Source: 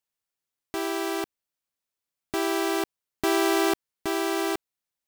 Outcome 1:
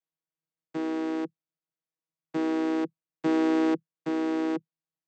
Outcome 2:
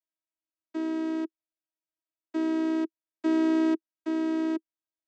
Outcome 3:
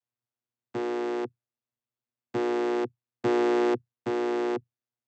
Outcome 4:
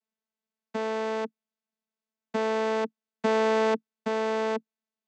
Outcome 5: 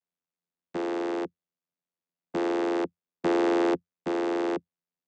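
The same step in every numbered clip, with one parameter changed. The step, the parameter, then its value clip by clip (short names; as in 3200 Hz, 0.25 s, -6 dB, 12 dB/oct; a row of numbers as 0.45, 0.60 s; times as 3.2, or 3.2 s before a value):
vocoder, frequency: 160, 320, 120, 220, 86 Hz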